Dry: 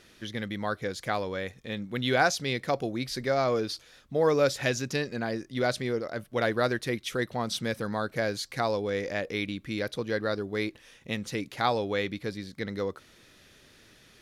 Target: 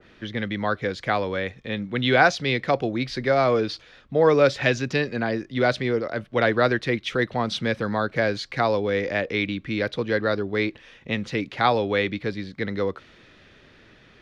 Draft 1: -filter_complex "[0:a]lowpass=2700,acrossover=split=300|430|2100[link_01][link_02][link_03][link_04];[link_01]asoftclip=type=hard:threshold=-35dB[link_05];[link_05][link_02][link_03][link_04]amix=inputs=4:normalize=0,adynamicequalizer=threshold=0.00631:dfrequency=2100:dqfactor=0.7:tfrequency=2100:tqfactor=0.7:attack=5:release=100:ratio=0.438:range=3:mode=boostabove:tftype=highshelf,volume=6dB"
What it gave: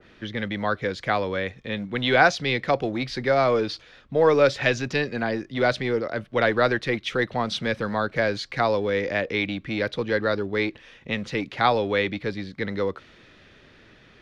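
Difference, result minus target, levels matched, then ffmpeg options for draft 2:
hard clipping: distortion +34 dB
-filter_complex "[0:a]lowpass=2700,acrossover=split=300|430|2100[link_01][link_02][link_03][link_04];[link_01]asoftclip=type=hard:threshold=-26dB[link_05];[link_05][link_02][link_03][link_04]amix=inputs=4:normalize=0,adynamicequalizer=threshold=0.00631:dfrequency=2100:dqfactor=0.7:tfrequency=2100:tqfactor=0.7:attack=5:release=100:ratio=0.438:range=3:mode=boostabove:tftype=highshelf,volume=6dB"

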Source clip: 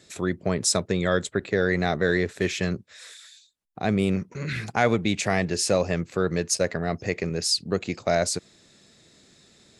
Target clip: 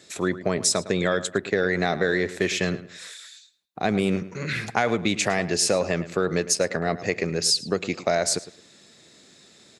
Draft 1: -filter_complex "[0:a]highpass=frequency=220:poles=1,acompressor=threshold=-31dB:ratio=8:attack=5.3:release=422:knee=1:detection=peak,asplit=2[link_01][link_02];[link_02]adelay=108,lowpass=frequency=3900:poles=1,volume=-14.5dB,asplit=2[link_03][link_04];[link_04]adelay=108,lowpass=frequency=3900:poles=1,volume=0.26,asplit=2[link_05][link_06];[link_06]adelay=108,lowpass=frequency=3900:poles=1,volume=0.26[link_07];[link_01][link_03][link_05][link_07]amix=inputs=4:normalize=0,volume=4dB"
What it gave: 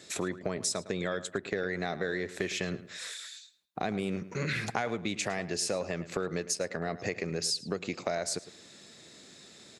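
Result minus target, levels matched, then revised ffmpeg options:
downward compressor: peak gain reduction +10 dB
-filter_complex "[0:a]highpass=frequency=220:poles=1,acompressor=threshold=-19.5dB:ratio=8:attack=5.3:release=422:knee=1:detection=peak,asplit=2[link_01][link_02];[link_02]adelay=108,lowpass=frequency=3900:poles=1,volume=-14.5dB,asplit=2[link_03][link_04];[link_04]adelay=108,lowpass=frequency=3900:poles=1,volume=0.26,asplit=2[link_05][link_06];[link_06]adelay=108,lowpass=frequency=3900:poles=1,volume=0.26[link_07];[link_01][link_03][link_05][link_07]amix=inputs=4:normalize=0,volume=4dB"

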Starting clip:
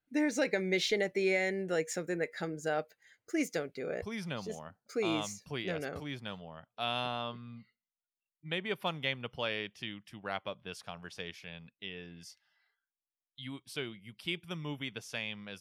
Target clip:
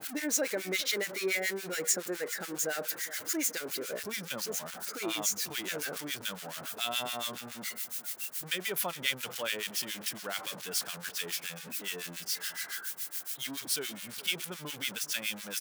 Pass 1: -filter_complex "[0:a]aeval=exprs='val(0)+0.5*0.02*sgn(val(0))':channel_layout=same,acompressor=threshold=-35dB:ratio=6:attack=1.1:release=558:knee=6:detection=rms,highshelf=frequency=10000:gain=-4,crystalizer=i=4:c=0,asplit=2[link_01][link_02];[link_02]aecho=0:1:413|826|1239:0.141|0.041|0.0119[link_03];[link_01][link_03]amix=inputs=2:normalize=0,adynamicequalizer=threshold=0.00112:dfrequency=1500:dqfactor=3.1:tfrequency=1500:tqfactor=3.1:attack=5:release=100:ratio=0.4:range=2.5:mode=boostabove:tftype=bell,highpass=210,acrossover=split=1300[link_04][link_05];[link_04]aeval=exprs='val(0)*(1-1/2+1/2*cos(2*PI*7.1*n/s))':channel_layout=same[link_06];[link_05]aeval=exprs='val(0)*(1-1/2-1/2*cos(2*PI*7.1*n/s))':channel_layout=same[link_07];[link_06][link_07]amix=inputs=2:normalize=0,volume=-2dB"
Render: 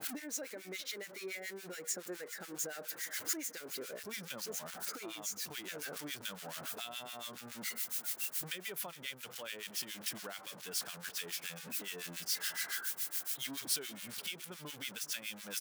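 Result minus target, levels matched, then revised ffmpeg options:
downward compressor: peak gain reduction +14 dB
-filter_complex "[0:a]aeval=exprs='val(0)+0.5*0.02*sgn(val(0))':channel_layout=same,highshelf=frequency=10000:gain=-4,crystalizer=i=4:c=0,asplit=2[link_01][link_02];[link_02]aecho=0:1:413|826|1239:0.141|0.041|0.0119[link_03];[link_01][link_03]amix=inputs=2:normalize=0,adynamicequalizer=threshold=0.00112:dfrequency=1500:dqfactor=3.1:tfrequency=1500:tqfactor=3.1:attack=5:release=100:ratio=0.4:range=2.5:mode=boostabove:tftype=bell,highpass=210,acrossover=split=1300[link_04][link_05];[link_04]aeval=exprs='val(0)*(1-1/2+1/2*cos(2*PI*7.1*n/s))':channel_layout=same[link_06];[link_05]aeval=exprs='val(0)*(1-1/2-1/2*cos(2*PI*7.1*n/s))':channel_layout=same[link_07];[link_06][link_07]amix=inputs=2:normalize=0,volume=-2dB"

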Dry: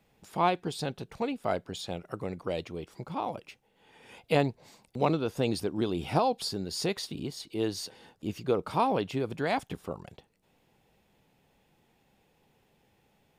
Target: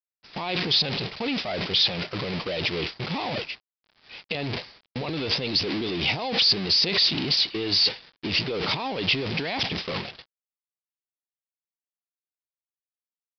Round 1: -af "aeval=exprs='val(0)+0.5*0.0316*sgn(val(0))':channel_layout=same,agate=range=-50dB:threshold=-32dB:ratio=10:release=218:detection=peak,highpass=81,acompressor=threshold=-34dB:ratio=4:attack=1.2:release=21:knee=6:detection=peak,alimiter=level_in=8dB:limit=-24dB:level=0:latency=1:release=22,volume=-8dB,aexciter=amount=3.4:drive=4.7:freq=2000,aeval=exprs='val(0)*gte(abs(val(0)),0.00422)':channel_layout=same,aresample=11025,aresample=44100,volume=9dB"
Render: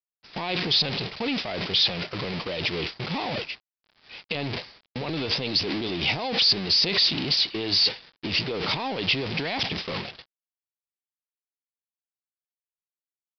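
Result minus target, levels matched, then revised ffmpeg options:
downward compressor: peak gain reduction +15 dB
-af "aeval=exprs='val(0)+0.5*0.0316*sgn(val(0))':channel_layout=same,agate=range=-50dB:threshold=-32dB:ratio=10:release=218:detection=peak,highpass=81,alimiter=level_in=8dB:limit=-24dB:level=0:latency=1:release=22,volume=-8dB,aexciter=amount=3.4:drive=4.7:freq=2000,aeval=exprs='val(0)*gte(abs(val(0)),0.00422)':channel_layout=same,aresample=11025,aresample=44100,volume=9dB"

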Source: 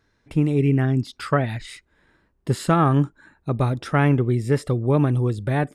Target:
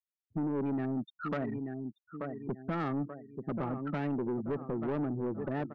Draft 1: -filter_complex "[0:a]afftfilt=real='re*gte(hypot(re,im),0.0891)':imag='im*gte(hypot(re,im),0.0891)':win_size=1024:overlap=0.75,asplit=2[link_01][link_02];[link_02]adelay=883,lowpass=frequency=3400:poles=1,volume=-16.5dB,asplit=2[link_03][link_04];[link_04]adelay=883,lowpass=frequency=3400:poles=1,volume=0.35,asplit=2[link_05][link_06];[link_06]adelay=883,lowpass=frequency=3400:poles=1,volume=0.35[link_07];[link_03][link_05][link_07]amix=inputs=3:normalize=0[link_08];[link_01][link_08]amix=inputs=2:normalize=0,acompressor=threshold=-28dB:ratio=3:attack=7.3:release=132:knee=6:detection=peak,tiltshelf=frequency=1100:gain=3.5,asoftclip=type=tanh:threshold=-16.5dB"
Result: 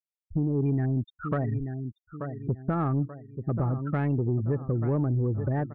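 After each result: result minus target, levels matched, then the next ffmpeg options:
soft clipping: distortion −12 dB; 250 Hz band −3.0 dB
-filter_complex "[0:a]afftfilt=real='re*gte(hypot(re,im),0.0891)':imag='im*gte(hypot(re,im),0.0891)':win_size=1024:overlap=0.75,asplit=2[link_01][link_02];[link_02]adelay=883,lowpass=frequency=3400:poles=1,volume=-16.5dB,asplit=2[link_03][link_04];[link_04]adelay=883,lowpass=frequency=3400:poles=1,volume=0.35,asplit=2[link_05][link_06];[link_06]adelay=883,lowpass=frequency=3400:poles=1,volume=0.35[link_07];[link_03][link_05][link_07]amix=inputs=3:normalize=0[link_08];[link_01][link_08]amix=inputs=2:normalize=0,acompressor=threshold=-28dB:ratio=3:attack=7.3:release=132:knee=6:detection=peak,tiltshelf=frequency=1100:gain=3.5,asoftclip=type=tanh:threshold=-28dB"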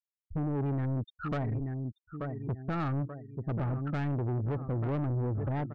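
250 Hz band −3.5 dB
-filter_complex "[0:a]afftfilt=real='re*gte(hypot(re,im),0.0891)':imag='im*gte(hypot(re,im),0.0891)':win_size=1024:overlap=0.75,asplit=2[link_01][link_02];[link_02]adelay=883,lowpass=frequency=3400:poles=1,volume=-16.5dB,asplit=2[link_03][link_04];[link_04]adelay=883,lowpass=frequency=3400:poles=1,volume=0.35,asplit=2[link_05][link_06];[link_06]adelay=883,lowpass=frequency=3400:poles=1,volume=0.35[link_07];[link_03][link_05][link_07]amix=inputs=3:normalize=0[link_08];[link_01][link_08]amix=inputs=2:normalize=0,acompressor=threshold=-28dB:ratio=3:attack=7.3:release=132:knee=6:detection=peak,highpass=frequency=180:width=0.5412,highpass=frequency=180:width=1.3066,tiltshelf=frequency=1100:gain=3.5,asoftclip=type=tanh:threshold=-28dB"

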